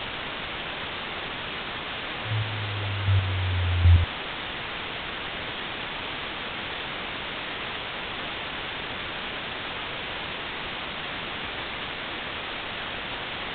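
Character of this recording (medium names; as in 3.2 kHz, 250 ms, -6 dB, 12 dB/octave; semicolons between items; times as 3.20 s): chopped level 1.3 Hz, depth 65%, duty 15%; a quantiser's noise floor 6-bit, dither triangular; µ-law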